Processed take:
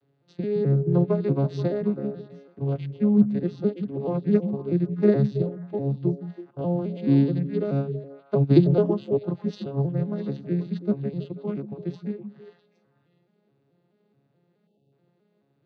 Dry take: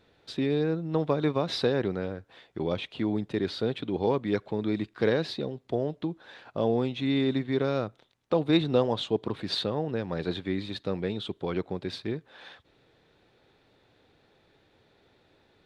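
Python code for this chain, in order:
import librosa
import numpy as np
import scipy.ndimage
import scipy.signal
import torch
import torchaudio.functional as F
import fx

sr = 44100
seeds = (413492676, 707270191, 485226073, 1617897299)

y = fx.vocoder_arp(x, sr, chord='major triad', root=49, every_ms=214)
y = fx.low_shelf(y, sr, hz=430.0, db=6.0)
y = fx.echo_stepped(y, sr, ms=163, hz=160.0, octaves=1.4, feedback_pct=70, wet_db=-3.5)
y = fx.spec_erase(y, sr, start_s=14.67, length_s=0.26, low_hz=850.0, high_hz=2600.0)
y = fx.upward_expand(y, sr, threshold_db=-33.0, expansion=1.5)
y = y * librosa.db_to_amplitude(4.0)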